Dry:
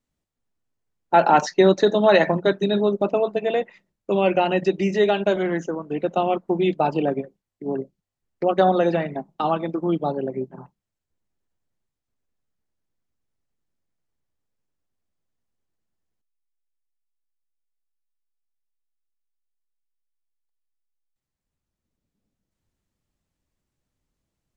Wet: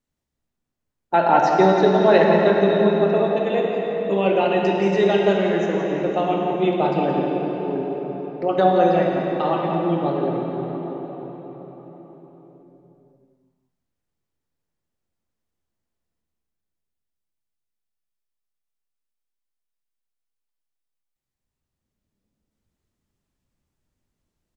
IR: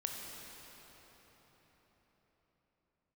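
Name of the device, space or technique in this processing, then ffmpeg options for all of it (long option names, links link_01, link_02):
cave: -filter_complex "[0:a]asettb=1/sr,asplit=3[link_01][link_02][link_03];[link_01]atrim=end=1.184[link_04];[link_02]atrim=start=1.18:end=2.98,asetpts=PTS-STARTPTS,afade=type=in:duration=0.004:curve=qsin,afade=type=out:start_time=1.796:duration=0.004:curve=qsin,aemphasis=mode=reproduction:type=50fm[link_05];[link_03]atrim=start=2.976[link_06];[link_04][link_05]acrossfade=duration=0.004:curve1=hsin:curve2=qsin[link_07];[link_07][link_06]acrossfade=duration=0.004:curve1=qsin:curve2=hsin,aecho=1:1:172:0.335[link_08];[1:a]atrim=start_sample=2205[link_09];[link_08][link_09]afir=irnorm=-1:irlink=0"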